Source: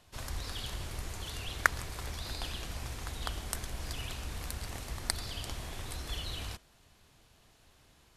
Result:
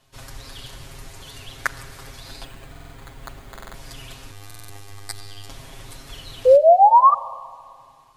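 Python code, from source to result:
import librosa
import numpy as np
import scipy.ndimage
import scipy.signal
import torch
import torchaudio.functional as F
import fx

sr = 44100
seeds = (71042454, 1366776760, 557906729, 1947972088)

y = fx.resample_bad(x, sr, factor=8, down='filtered', up='hold', at=(2.44, 3.67))
y = fx.robotise(y, sr, hz=101.0, at=(4.31, 5.49))
y = fx.spec_paint(y, sr, seeds[0], shape='rise', start_s=6.45, length_s=0.69, low_hz=490.0, high_hz=1200.0, level_db=-13.0)
y = y + 0.98 * np.pad(y, (int(7.4 * sr / 1000.0), 0))[:len(y)]
y = fx.rev_schroeder(y, sr, rt60_s=2.1, comb_ms=30, drr_db=17.5)
y = fx.buffer_glitch(y, sr, at_s=(2.71, 3.51, 4.46), block=2048, repeats=4)
y = y * 10.0 ** (-1.5 / 20.0)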